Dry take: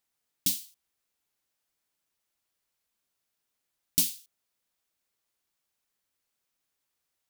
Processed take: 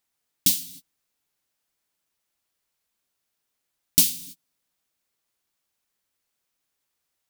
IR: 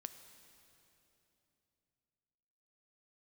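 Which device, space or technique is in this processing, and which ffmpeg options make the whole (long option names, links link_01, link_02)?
keyed gated reverb: -filter_complex "[0:a]asplit=3[link_01][link_02][link_03];[1:a]atrim=start_sample=2205[link_04];[link_02][link_04]afir=irnorm=-1:irlink=0[link_05];[link_03]apad=whole_len=321695[link_06];[link_05][link_06]sidechaingate=range=-38dB:threshold=-57dB:ratio=16:detection=peak,volume=2.5dB[link_07];[link_01][link_07]amix=inputs=2:normalize=0,volume=2.5dB"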